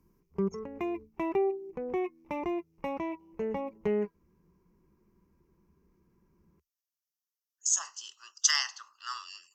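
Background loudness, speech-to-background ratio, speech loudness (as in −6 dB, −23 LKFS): −34.5 LKFS, 5.5 dB, −29.0 LKFS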